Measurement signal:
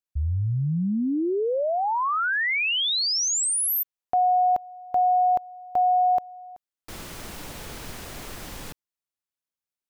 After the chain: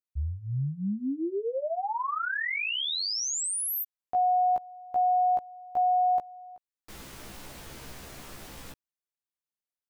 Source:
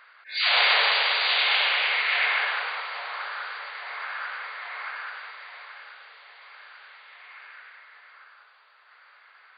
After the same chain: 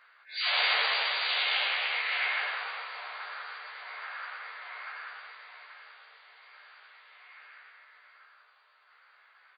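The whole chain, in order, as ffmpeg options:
-filter_complex "[0:a]asplit=2[a][b];[b]adelay=15,volume=-2dB[c];[a][c]amix=inputs=2:normalize=0,volume=-8.5dB"

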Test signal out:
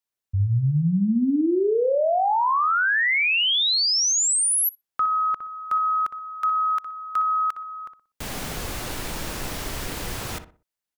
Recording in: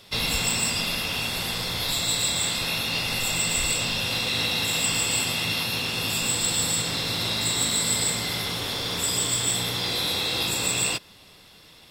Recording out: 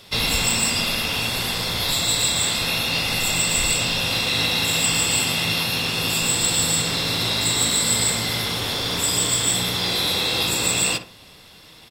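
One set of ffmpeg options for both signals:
-filter_complex "[0:a]asplit=2[a][b];[b]adelay=61,lowpass=f=1.7k:p=1,volume=-9dB,asplit=2[c][d];[d]adelay=61,lowpass=f=1.7k:p=1,volume=0.35,asplit=2[e][f];[f]adelay=61,lowpass=f=1.7k:p=1,volume=0.35,asplit=2[g][h];[h]adelay=61,lowpass=f=1.7k:p=1,volume=0.35[i];[a][c][e][g][i]amix=inputs=5:normalize=0,volume=4dB"

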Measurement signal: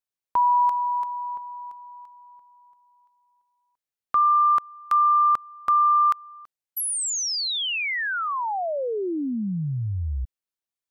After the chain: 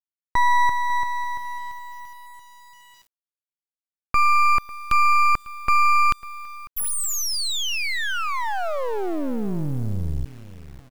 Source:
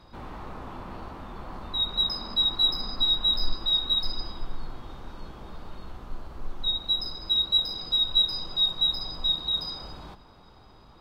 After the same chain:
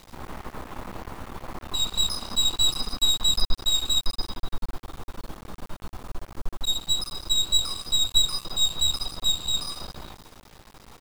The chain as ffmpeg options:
-filter_complex "[0:a]asplit=2[a][b];[b]adelay=548,lowpass=f=980:p=1,volume=-16dB,asplit=2[c][d];[d]adelay=548,lowpass=f=980:p=1,volume=0.37,asplit=2[e][f];[f]adelay=548,lowpass=f=980:p=1,volume=0.37[g];[a][c][e][g]amix=inputs=4:normalize=0,aeval=exprs='max(val(0),0)':c=same,acrusher=bits=6:dc=4:mix=0:aa=0.000001,volume=5.5dB"

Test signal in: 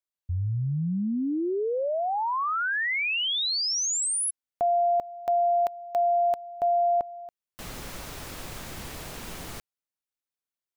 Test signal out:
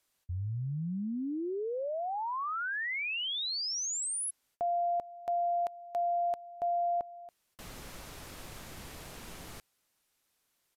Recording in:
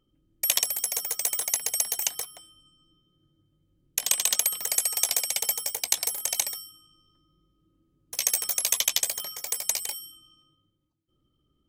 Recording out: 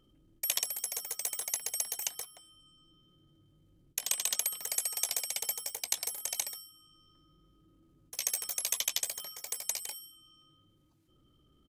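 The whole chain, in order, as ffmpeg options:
-af "areverse,acompressor=mode=upward:threshold=-45dB:ratio=2.5:attack=0.24:release=34:knee=2.83:detection=peak,areverse,aresample=32000,aresample=44100,volume=-7.5dB"

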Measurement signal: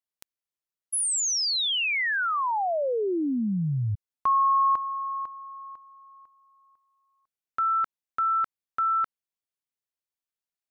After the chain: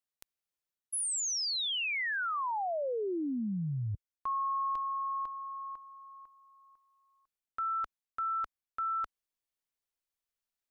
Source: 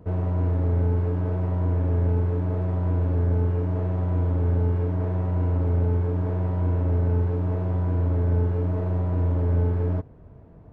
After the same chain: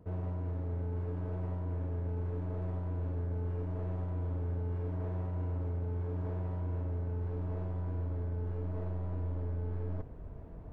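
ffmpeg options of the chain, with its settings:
-af "asubboost=boost=3:cutoff=58,areverse,acompressor=threshold=-32dB:ratio=5:attack=0.61:release=441:knee=6:detection=rms,areverse"

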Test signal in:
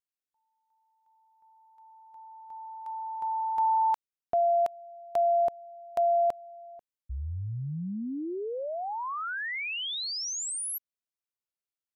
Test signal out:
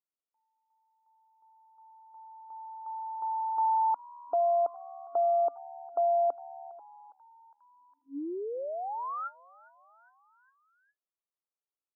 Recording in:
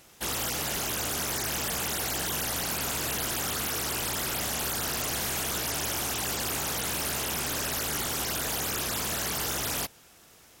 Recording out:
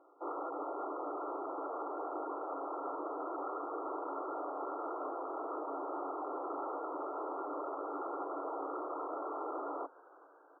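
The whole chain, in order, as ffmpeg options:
-filter_complex "[0:a]afftfilt=real='re*between(b*sr/4096,270,1400)':imag='im*between(b*sr/4096,270,1400)':win_size=4096:overlap=0.75,asplit=5[a][b][c][d][e];[b]adelay=408,afreqshift=74,volume=-23dB[f];[c]adelay=816,afreqshift=148,volume=-27.6dB[g];[d]adelay=1224,afreqshift=222,volume=-32.2dB[h];[e]adelay=1632,afreqshift=296,volume=-36.7dB[i];[a][f][g][h][i]amix=inputs=5:normalize=0,volume=-1.5dB"

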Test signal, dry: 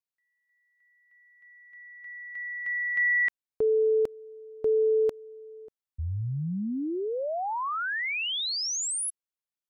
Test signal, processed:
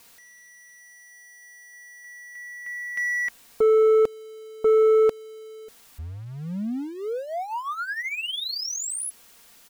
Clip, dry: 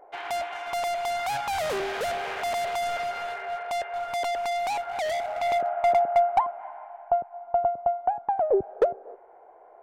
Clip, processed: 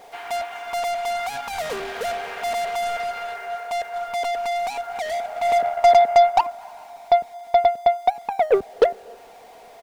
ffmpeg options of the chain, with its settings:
-af "aeval=exprs='val(0)+0.5*0.0112*sgn(val(0))':c=same,aecho=1:1:4.3:0.39,aeval=exprs='0.316*(cos(1*acos(clip(val(0)/0.316,-1,1)))-cos(1*PI/2))+0.0282*(cos(7*acos(clip(val(0)/0.316,-1,1)))-cos(7*PI/2))':c=same,volume=4dB"

